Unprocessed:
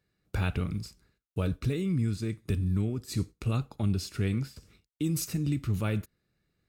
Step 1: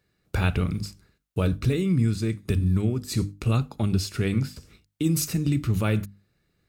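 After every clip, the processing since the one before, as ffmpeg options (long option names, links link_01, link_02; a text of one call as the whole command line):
ffmpeg -i in.wav -af "bandreject=frequency=50:width_type=h:width=6,bandreject=frequency=100:width_type=h:width=6,bandreject=frequency=150:width_type=h:width=6,bandreject=frequency=200:width_type=h:width=6,bandreject=frequency=250:width_type=h:width=6,bandreject=frequency=300:width_type=h:width=6,volume=6.5dB" out.wav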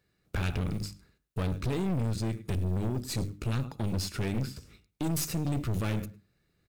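ffmpeg -i in.wav -filter_complex "[0:a]acrusher=bits=7:mode=log:mix=0:aa=0.000001,asplit=2[link_01][link_02];[link_02]adelay=106,lowpass=frequency=2400:poles=1,volume=-18dB,asplit=2[link_03][link_04];[link_04]adelay=106,lowpass=frequency=2400:poles=1,volume=0.18[link_05];[link_01][link_03][link_05]amix=inputs=3:normalize=0,aeval=exprs='(tanh(22.4*val(0)+0.55)-tanh(0.55))/22.4':channel_layout=same" out.wav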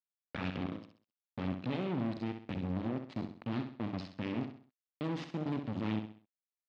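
ffmpeg -i in.wav -filter_complex "[0:a]acrusher=bits=3:mix=0:aa=0.5,highpass=150,equalizer=frequency=250:width_type=q:width=4:gain=5,equalizer=frequency=430:width_type=q:width=4:gain=-4,equalizer=frequency=1500:width_type=q:width=4:gain=-4,lowpass=frequency=3900:width=0.5412,lowpass=frequency=3900:width=1.3066,asplit=2[link_01][link_02];[link_02]aecho=0:1:65|130|195|260:0.398|0.151|0.0575|0.0218[link_03];[link_01][link_03]amix=inputs=2:normalize=0" out.wav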